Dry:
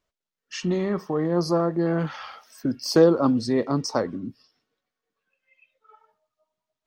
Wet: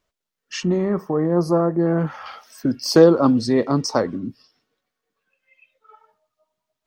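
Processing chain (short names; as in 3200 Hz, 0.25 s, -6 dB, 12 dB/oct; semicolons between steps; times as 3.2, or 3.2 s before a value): 0.63–2.26 bell 3900 Hz -14 dB 1.6 oct; gain +4.5 dB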